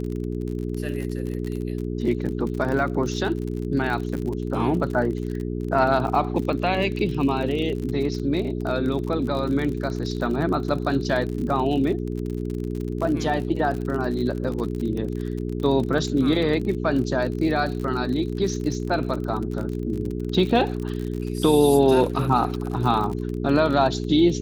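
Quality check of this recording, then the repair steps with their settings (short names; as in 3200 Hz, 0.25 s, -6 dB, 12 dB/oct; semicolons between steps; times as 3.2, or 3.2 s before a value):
crackle 48/s -29 dBFS
hum 60 Hz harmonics 7 -28 dBFS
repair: de-click; de-hum 60 Hz, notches 7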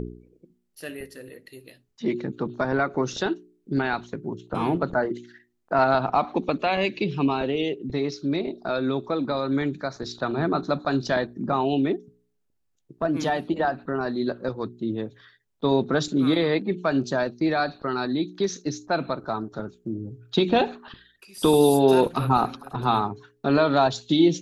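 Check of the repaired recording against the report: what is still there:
none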